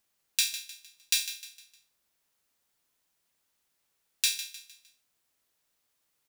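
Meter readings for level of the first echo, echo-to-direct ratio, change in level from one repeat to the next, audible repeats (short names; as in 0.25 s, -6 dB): -12.5 dB, -12.0 dB, -8.0 dB, 3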